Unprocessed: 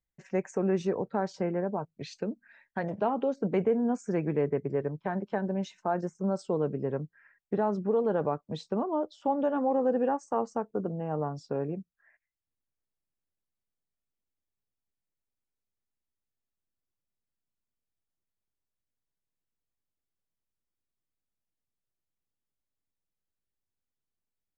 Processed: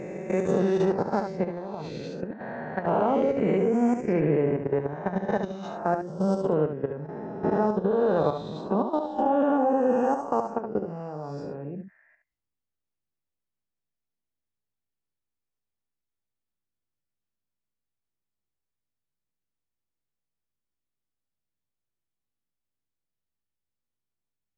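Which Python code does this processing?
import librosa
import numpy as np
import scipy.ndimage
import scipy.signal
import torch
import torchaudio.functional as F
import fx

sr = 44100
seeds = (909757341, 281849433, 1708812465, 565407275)

y = fx.spec_swells(x, sr, rise_s=1.72)
y = fx.low_shelf(y, sr, hz=280.0, db=3.0)
y = fx.level_steps(y, sr, step_db=13)
y = fx.high_shelf(y, sr, hz=5200.0, db=-9.0)
y = y + 10.0 ** (-7.5 / 20.0) * np.pad(y, (int(71 * sr / 1000.0), 0))[:len(y)]
y = F.gain(torch.from_numpy(y), 3.0).numpy()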